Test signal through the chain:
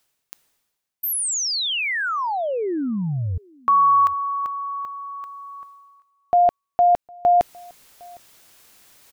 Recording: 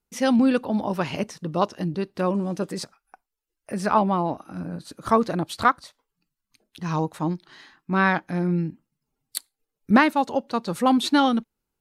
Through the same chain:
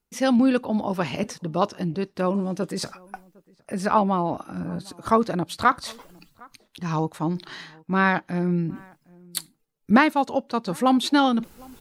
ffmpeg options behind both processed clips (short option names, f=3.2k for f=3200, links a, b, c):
-filter_complex "[0:a]areverse,acompressor=mode=upward:threshold=-25dB:ratio=2.5,areverse,asplit=2[a][b];[b]adelay=758,volume=-26dB,highshelf=f=4k:g=-17.1[c];[a][c]amix=inputs=2:normalize=0"